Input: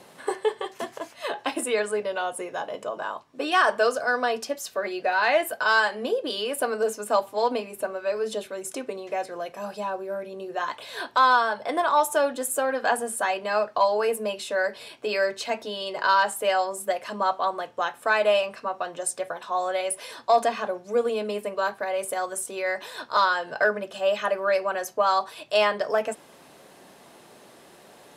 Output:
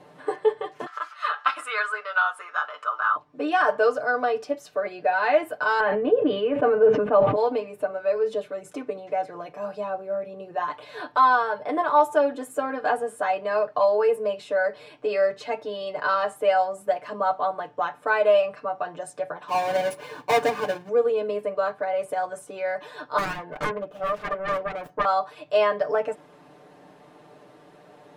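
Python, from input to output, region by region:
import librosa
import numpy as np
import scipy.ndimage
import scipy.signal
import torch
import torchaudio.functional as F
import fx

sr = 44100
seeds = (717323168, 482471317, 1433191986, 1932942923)

y = fx.chain(x, sr, fx.highpass_res(hz=1300.0, q=16.0),
    fx.peak_eq(hz=4200.0, db=6.0, octaves=1.3), at=(0.86, 3.16))
y = fx.chain(y, sr, fx.lowpass(hz=3000.0, slope=24),
    fx.low_shelf(hz=270.0, db=11.0),
    fx.sustainer(db_per_s=40.0), at=(5.8, 7.36))
y = fx.chain(y, sr, fx.halfwave_hold(),
    fx.highpass(hz=81.0, slope=12),
    fx.notch_comb(f0_hz=660.0), at=(19.48, 20.89))
y = fx.chain(y, sr, fx.self_delay(depth_ms=0.91),
    fx.peak_eq(hz=5300.0, db=-11.5, octaves=2.3), at=(23.18, 25.05))
y = fx.lowpass(y, sr, hz=1200.0, slope=6)
y = y + 0.79 * np.pad(y, (int(6.7 * sr / 1000.0), 0))[:len(y)]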